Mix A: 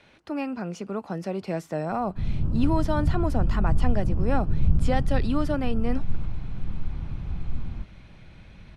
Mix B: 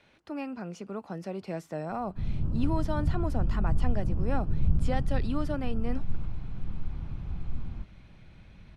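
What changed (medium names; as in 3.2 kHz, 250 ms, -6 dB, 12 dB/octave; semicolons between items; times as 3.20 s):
speech -6.0 dB; background -4.0 dB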